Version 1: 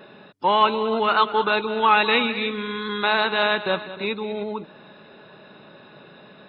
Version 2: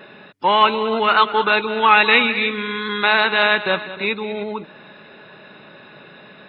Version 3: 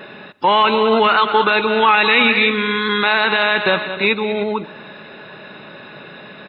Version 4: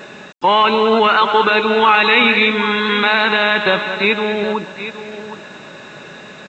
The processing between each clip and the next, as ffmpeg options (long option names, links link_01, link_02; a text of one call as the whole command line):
ffmpeg -i in.wav -af "equalizer=frequency=2100:width=1.3:gain=7,volume=2dB" out.wav
ffmpeg -i in.wav -af "aecho=1:1:116|232|348|464:0.0708|0.0411|0.0238|0.0138,alimiter=limit=-10dB:level=0:latency=1:release=31,volume=6dB" out.wav
ffmpeg -i in.wav -af "aresample=16000,acrusher=bits=7:mix=0:aa=0.000001,aresample=44100,aecho=1:1:769:0.251,volume=1dB" out.wav